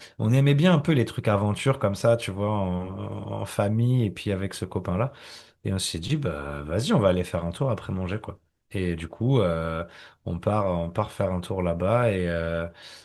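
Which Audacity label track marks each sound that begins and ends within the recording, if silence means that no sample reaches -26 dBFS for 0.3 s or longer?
5.660000	8.300000	sound
8.750000	9.820000	sound
10.270000	12.660000	sound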